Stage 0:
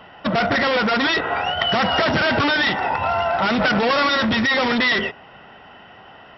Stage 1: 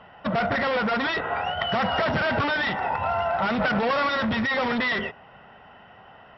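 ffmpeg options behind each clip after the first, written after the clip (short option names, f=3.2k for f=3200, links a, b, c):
-af "lowpass=f=1.8k:p=1,equalizer=f=320:w=2.1:g=-6.5,volume=-3dB"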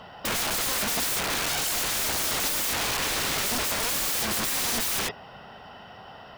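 -af "highshelf=f=3.5k:t=q:w=1.5:g=13.5,aeval=exprs='(mod(22.4*val(0)+1,2)-1)/22.4':c=same,volume=4.5dB"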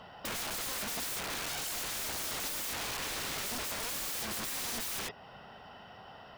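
-af "acompressor=threshold=-36dB:ratio=1.5,volume=-6dB"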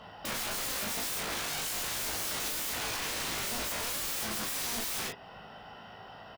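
-af "aecho=1:1:18|38:0.596|0.631"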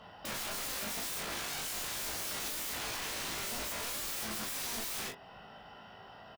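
-filter_complex "[0:a]asplit=2[a][b];[b]adelay=23,volume=-11dB[c];[a][c]amix=inputs=2:normalize=0,volume=-4dB"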